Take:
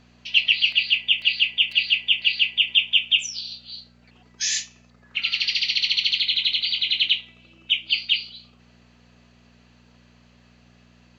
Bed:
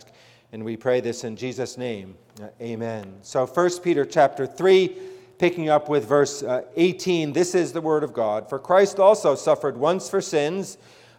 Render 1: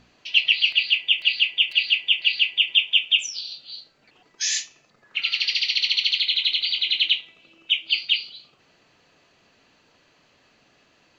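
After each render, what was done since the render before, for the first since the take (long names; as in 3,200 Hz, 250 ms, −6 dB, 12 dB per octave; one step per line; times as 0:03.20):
hum removal 60 Hz, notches 4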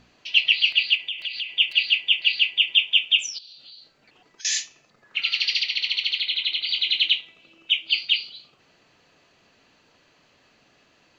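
0:00.95–0:01.57: downward compressor 12 to 1, threshold −25 dBFS
0:03.38–0:04.45: downward compressor 16 to 1, threshold −41 dBFS
0:05.63–0:06.69: bass and treble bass −2 dB, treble −9 dB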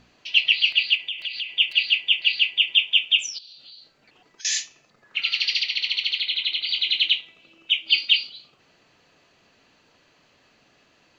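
0:07.86–0:08.27: comb filter 3.6 ms, depth 87%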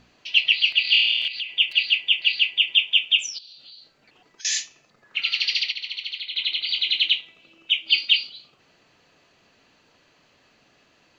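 0:00.82–0:01.28: flutter between parallel walls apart 4.4 metres, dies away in 1.2 s
0:05.72–0:06.36: clip gain −7 dB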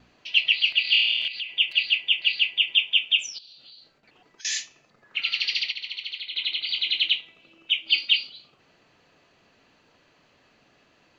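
noise gate with hold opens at −52 dBFS
high-shelf EQ 3,900 Hz −6 dB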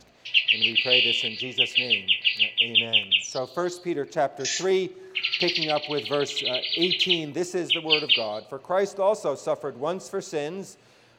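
mix in bed −7.5 dB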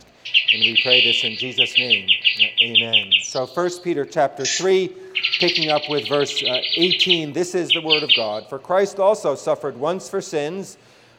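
level +6 dB
brickwall limiter −3 dBFS, peak gain reduction 3 dB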